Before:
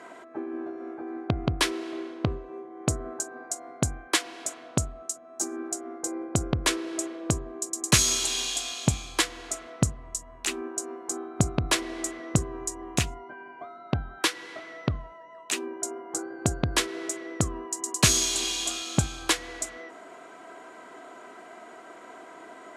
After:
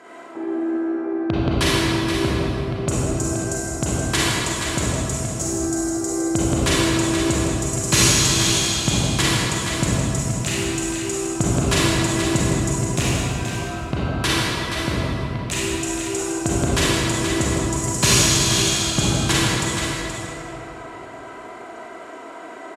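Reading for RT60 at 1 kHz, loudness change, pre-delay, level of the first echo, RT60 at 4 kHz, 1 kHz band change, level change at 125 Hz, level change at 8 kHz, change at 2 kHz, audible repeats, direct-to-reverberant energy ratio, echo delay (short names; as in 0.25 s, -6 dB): 2.8 s, +8.0 dB, 32 ms, -7.5 dB, 2.0 s, +8.5 dB, +9.5 dB, +6.5 dB, +9.0 dB, 1, -9.0 dB, 0.476 s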